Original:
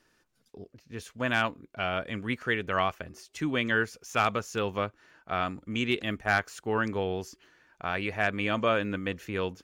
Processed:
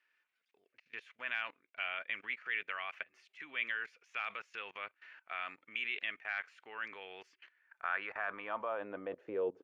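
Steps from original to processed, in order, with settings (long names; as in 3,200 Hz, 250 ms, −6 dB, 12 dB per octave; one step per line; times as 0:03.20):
output level in coarse steps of 20 dB
bass and treble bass −8 dB, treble −9 dB
band-pass filter sweep 2,300 Hz → 410 Hz, 0:07.41–0:09.63
level +10.5 dB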